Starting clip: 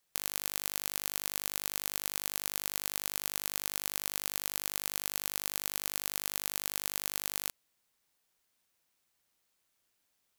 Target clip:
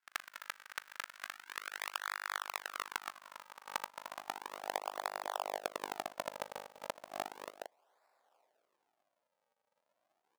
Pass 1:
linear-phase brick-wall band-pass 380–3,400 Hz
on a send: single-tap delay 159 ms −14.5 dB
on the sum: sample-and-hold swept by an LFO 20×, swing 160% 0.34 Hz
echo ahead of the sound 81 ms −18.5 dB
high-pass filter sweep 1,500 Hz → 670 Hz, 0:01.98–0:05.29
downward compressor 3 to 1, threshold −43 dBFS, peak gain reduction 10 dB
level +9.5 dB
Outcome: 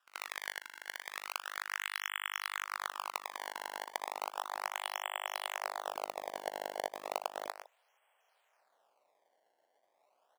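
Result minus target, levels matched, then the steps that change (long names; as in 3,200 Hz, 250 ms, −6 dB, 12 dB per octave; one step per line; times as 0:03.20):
sample-and-hold swept by an LFO: distortion −21 dB
change: sample-and-hold swept by an LFO 71×, swing 160% 0.34 Hz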